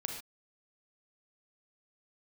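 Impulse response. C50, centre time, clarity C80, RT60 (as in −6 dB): 4.0 dB, 31 ms, 7.0 dB, non-exponential decay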